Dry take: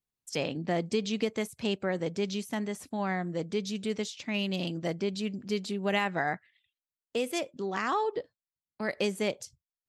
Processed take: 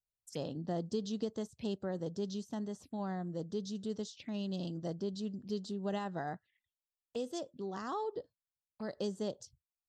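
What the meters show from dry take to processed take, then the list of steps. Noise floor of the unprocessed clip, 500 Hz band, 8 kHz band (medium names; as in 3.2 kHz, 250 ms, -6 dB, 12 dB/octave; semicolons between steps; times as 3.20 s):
under -85 dBFS, -7.5 dB, -9.5 dB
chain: bass shelf 140 Hz +7 dB; touch-sensitive phaser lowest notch 260 Hz, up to 2.3 kHz, full sweep at -31.5 dBFS; trim -7.5 dB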